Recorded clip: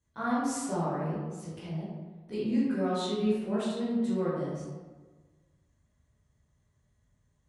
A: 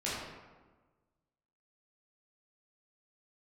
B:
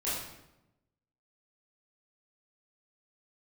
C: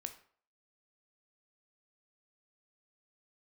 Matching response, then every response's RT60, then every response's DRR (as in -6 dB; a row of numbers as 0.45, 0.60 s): A; 1.3, 0.90, 0.50 s; -9.0, -10.5, 7.5 dB